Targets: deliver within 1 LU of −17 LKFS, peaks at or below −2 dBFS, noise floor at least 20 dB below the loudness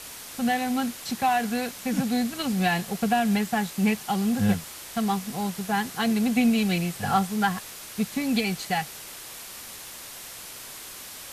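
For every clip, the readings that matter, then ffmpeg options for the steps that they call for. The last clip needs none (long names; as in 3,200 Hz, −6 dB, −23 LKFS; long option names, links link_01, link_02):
background noise floor −41 dBFS; target noise floor −46 dBFS; integrated loudness −26.0 LKFS; sample peak −9.5 dBFS; target loudness −17.0 LKFS
→ -af "afftdn=noise_reduction=6:noise_floor=-41"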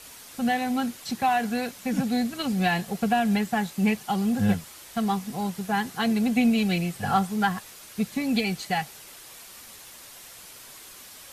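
background noise floor −46 dBFS; integrated loudness −26.0 LKFS; sample peak −10.0 dBFS; target loudness −17.0 LKFS
→ -af "volume=9dB,alimiter=limit=-2dB:level=0:latency=1"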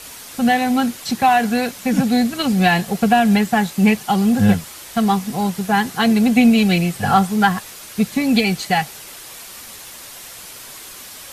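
integrated loudness −17.0 LKFS; sample peak −2.0 dBFS; background noise floor −37 dBFS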